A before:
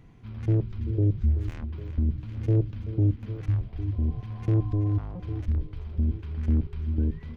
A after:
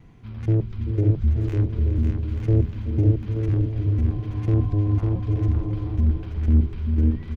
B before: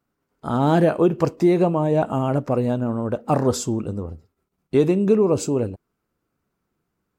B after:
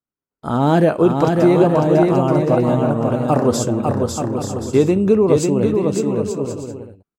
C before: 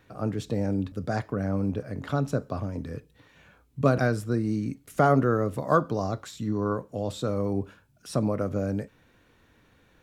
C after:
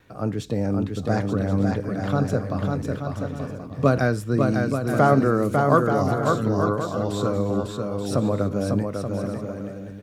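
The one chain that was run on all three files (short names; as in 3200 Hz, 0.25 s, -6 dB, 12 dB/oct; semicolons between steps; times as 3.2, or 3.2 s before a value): gate with hold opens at -55 dBFS; bouncing-ball echo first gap 0.55 s, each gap 0.6×, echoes 5; gain +3 dB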